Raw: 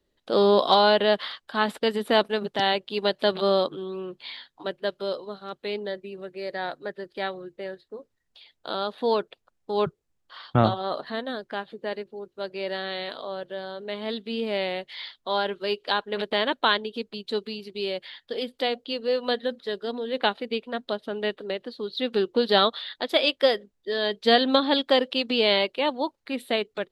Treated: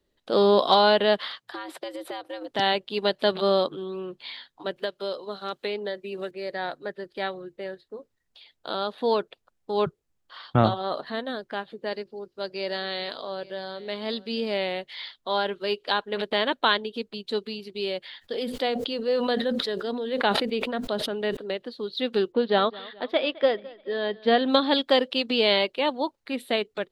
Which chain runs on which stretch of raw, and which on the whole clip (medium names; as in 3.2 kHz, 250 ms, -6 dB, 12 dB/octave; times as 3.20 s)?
1.41–2.51 s: compression 10:1, threshold -31 dBFS + frequency shift +110 Hz
4.76–6.31 s: bass shelf 160 Hz -10 dB + three bands compressed up and down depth 100%
11.86–14.54 s: peaking EQ 4.9 kHz +11 dB 0.31 oct + delay 839 ms -20.5 dB
18.19–21.37 s: dynamic bell 3.2 kHz, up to -4 dB, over -39 dBFS, Q 1.1 + decay stretcher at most 35 dB/s
22.32–24.46 s: distance through air 330 m + feedback delay 212 ms, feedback 47%, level -21 dB
whole clip: none